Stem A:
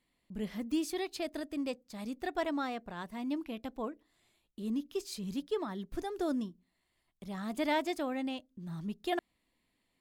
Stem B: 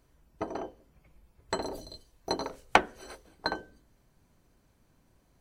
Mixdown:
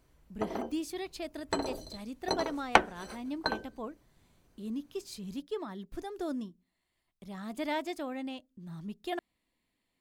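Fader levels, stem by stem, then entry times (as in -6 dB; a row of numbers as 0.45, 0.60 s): -2.5, -0.5 dB; 0.00, 0.00 s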